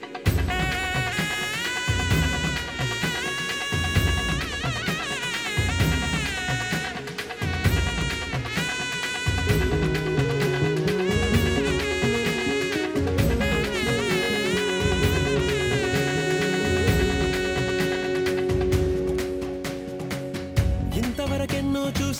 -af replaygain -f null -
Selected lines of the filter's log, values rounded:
track_gain = +7.1 dB
track_peak = 0.271